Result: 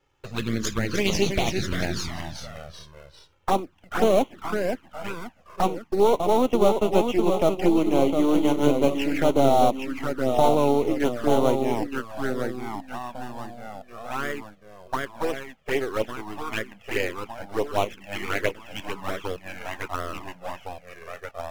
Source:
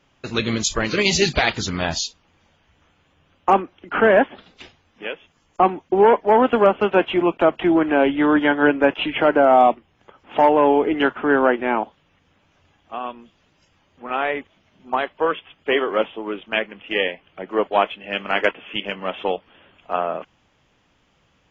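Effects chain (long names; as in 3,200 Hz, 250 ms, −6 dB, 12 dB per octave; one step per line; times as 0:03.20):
gain on one half-wave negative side −7 dB
in parallel at −7 dB: sample-rate reduction 4,700 Hz, jitter 20%
on the sum: delay with pitch and tempo change per echo 267 ms, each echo −1 semitone, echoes 3, each echo −6 dB
flanger swept by the level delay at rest 2.3 ms, full sweep at −12.5 dBFS
level −4 dB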